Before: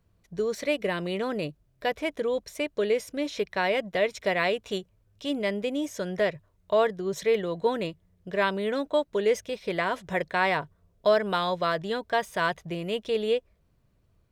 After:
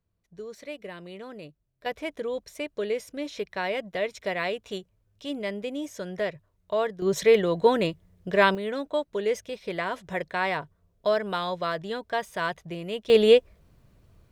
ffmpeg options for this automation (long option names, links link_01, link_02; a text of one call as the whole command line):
ffmpeg -i in.wav -af "asetnsamples=nb_out_samples=441:pad=0,asendcmd='1.86 volume volume -3.5dB;7.02 volume volume 5.5dB;8.55 volume volume -2.5dB;13.1 volume volume 9dB',volume=-11.5dB" out.wav